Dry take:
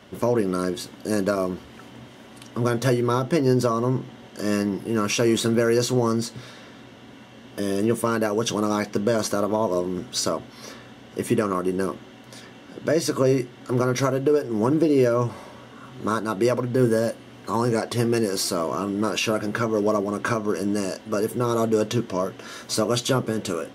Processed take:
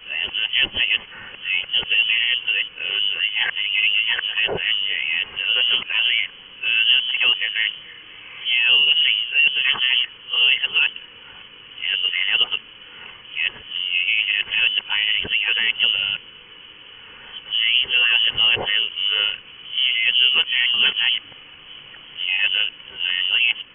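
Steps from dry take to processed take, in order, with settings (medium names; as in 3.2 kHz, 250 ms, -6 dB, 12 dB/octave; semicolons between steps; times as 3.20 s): reverse the whole clip; frequency inversion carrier 3.2 kHz; trim +2.5 dB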